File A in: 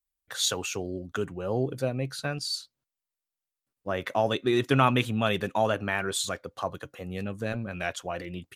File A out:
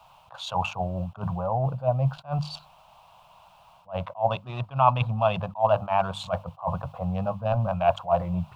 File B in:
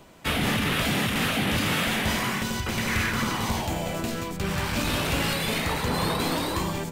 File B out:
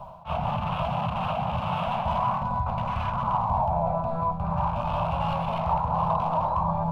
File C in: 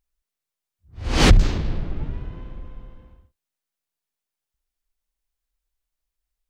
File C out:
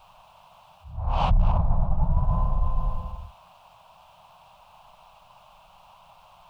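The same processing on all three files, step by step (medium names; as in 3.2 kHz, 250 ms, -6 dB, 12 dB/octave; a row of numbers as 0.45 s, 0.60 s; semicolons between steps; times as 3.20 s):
local Wiener filter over 15 samples; in parallel at -11 dB: word length cut 8-bit, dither triangular; on the sum: hum notches 50/100/150/200 Hz; reverse; compression 8:1, threshold -31 dBFS; reverse; FFT filter 170 Hz 0 dB, 280 Hz -22 dB, 400 Hz -24 dB, 630 Hz +5 dB, 1 kHz +9 dB, 1.9 kHz -22 dB, 2.7 kHz -4 dB, 4.5 kHz -17 dB, 6.6 kHz -24 dB, 11 kHz -27 dB; attacks held to a fixed rise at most 270 dB/s; normalise loudness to -27 LUFS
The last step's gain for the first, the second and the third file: +12.5 dB, +7.5 dB, +14.0 dB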